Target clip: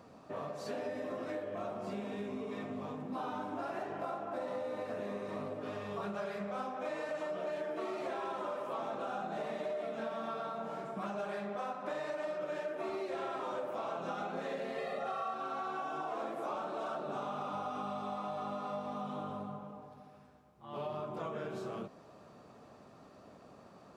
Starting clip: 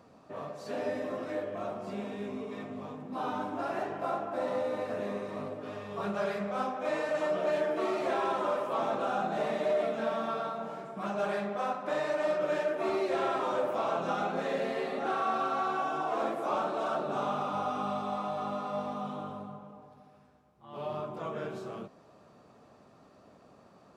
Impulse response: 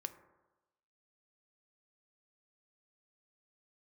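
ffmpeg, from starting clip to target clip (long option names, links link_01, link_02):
-filter_complex "[0:a]asettb=1/sr,asplit=3[link_01][link_02][link_03];[link_01]atrim=end=14.784[link_04];[link_02]atrim=start=14.78:end=15.34,asetpts=PTS-STARTPTS,afade=type=in:duration=0.004:curve=qsin,afade=type=out:start_time=0.556:duration=0.004:curve=qsin,aecho=1:1:1.6:0.96,atrim=end_sample=24696[link_05];[link_03]atrim=start=15.336[link_06];[link_04][link_05]acrossfade=duration=0.004:curve1=hsin:curve2=qsin[link_07];[link_07][link_06]acrossfade=duration=0.004:curve1=qsin:curve2=hsin,acompressor=threshold=-38dB:ratio=5,volume=1.5dB"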